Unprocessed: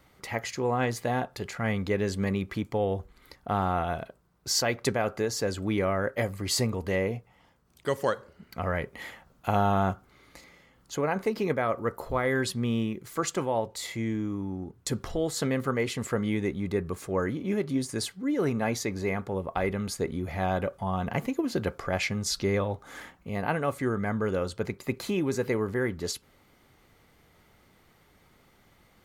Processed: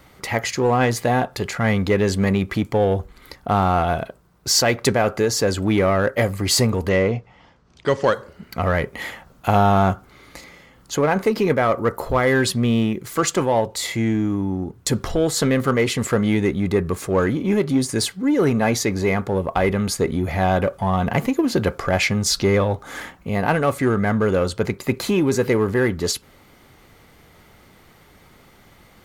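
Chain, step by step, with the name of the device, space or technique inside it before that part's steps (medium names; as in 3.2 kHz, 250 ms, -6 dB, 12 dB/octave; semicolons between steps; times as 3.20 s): 6.89–8.12 s: low-pass 6.2 kHz 24 dB/octave; parallel distortion (in parallel at -6 dB: hard clipper -28.5 dBFS, distortion -8 dB); on the sum: trim +7 dB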